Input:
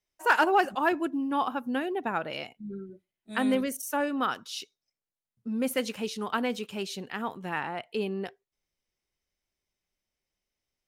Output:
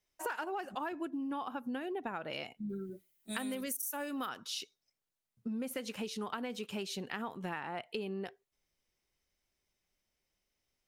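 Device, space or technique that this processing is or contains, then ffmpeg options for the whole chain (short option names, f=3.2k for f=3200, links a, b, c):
serial compression, leveller first: -filter_complex "[0:a]asettb=1/sr,asplit=3[a][b][c];[a]atrim=end=2.694[d];[b]atrim=start=2.69:end=4.29,asetpts=PTS-STARTPTS,afade=t=in:d=0.004:c=qsin,afade=t=out:st=1.596:d=0.004:c=qsin,aemphasis=mode=production:type=75fm[e];[c]atrim=start=4.286[f];[d][e]acrossfade=d=0.004:c1=hsin:c2=qsin[g];[g][f]acrossfade=d=0.004:c1=qsin:c2=hsin,acompressor=threshold=-27dB:ratio=3,acompressor=threshold=-39dB:ratio=5,volume=2.5dB"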